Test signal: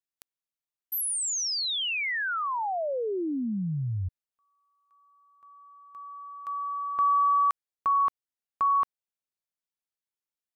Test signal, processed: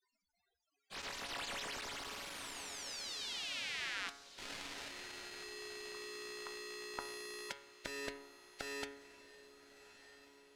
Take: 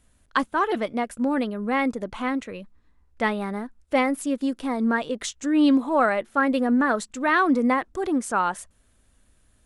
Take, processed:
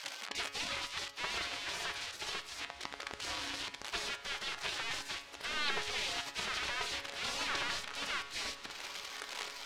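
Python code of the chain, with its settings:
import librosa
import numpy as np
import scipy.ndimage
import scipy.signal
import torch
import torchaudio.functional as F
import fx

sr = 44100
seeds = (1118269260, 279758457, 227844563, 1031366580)

p1 = x + 0.5 * 10.0 ** (-22.0 / 20.0) * np.sign(x)
p2 = fx.spec_gate(p1, sr, threshold_db=-30, keep='weak')
p3 = scipy.signal.sosfilt(scipy.signal.butter(2, 4400.0, 'lowpass', fs=sr, output='sos'), p2)
p4 = fx.peak_eq(p3, sr, hz=140.0, db=-14.0, octaves=0.23)
p5 = fx.hum_notches(p4, sr, base_hz=50, count=2)
p6 = fx.comb_fb(p5, sr, f0_hz=140.0, decay_s=0.83, harmonics='all', damping=0.4, mix_pct=80)
p7 = p6 + fx.echo_diffused(p6, sr, ms=1262, feedback_pct=50, wet_db=-14.5, dry=0)
y = p7 * librosa.db_to_amplitude(15.0)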